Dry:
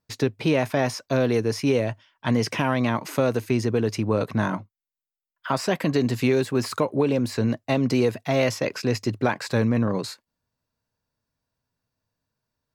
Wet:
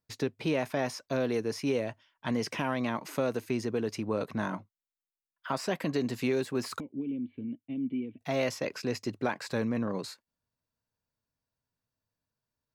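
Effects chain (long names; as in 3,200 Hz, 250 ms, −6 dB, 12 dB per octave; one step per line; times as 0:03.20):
0:06.80–0:08.21: formant resonators in series i
dynamic equaliser 110 Hz, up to −7 dB, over −40 dBFS, Q 2.2
level −7.5 dB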